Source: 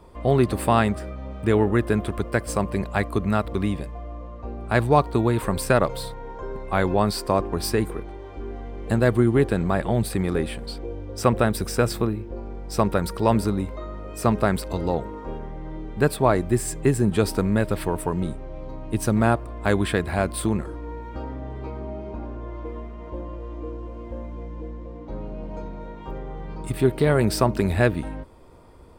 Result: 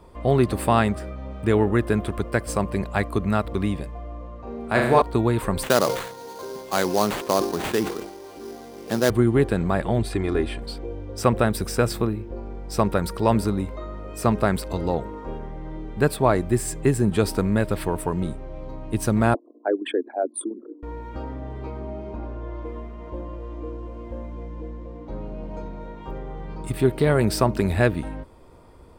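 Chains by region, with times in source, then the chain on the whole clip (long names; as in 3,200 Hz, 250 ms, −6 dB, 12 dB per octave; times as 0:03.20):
0:04.43–0:05.02: low-shelf EQ 130 Hz −9.5 dB + flutter between parallel walls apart 6.6 metres, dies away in 0.75 s
0:05.63–0:09.10: high-pass filter 210 Hz + sample-rate reduction 5,400 Hz, jitter 20% + level that may fall only so fast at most 75 dB per second
0:09.98–0:10.62: high-frequency loss of the air 52 metres + comb filter 2.9 ms, depth 55%
0:19.34–0:20.83: spectral envelope exaggerated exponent 3 + Butterworth high-pass 260 Hz 72 dB per octave
0:22.16–0:22.62: low-pass filter 7,200 Hz + double-tracking delay 32 ms −11 dB
whole clip: no processing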